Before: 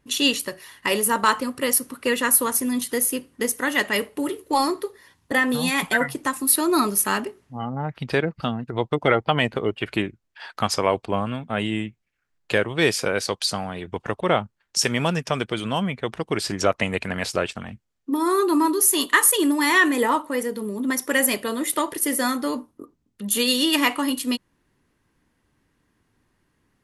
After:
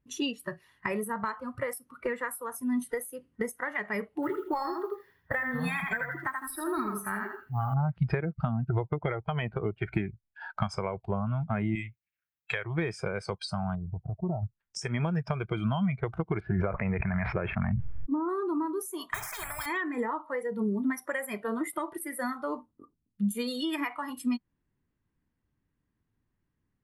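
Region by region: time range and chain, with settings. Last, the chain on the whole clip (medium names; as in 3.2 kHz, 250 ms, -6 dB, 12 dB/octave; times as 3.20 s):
4.22–7.74 s: peaking EQ 1.6 kHz +7 dB 0.81 oct + thinning echo 81 ms, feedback 31%, high-pass 210 Hz, level -3.5 dB + modulation noise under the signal 20 dB
11.75–12.65 s: high-pass 58 Hz + tilt shelf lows -9 dB, about 1.1 kHz
13.75–14.43 s: compression 1.5:1, threshold -37 dBFS + Gaussian low-pass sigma 11 samples
16.40–18.29 s: low-pass 2.4 kHz 24 dB/octave + decay stretcher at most 26 dB/s
19.14–19.66 s: peaking EQ 4.7 kHz -10 dB 1.4 oct + careless resampling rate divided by 2×, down none, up hold + spectrum-flattening compressor 10:1
whole clip: spectral noise reduction 17 dB; compression 12:1, threshold -29 dBFS; tone controls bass +9 dB, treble -9 dB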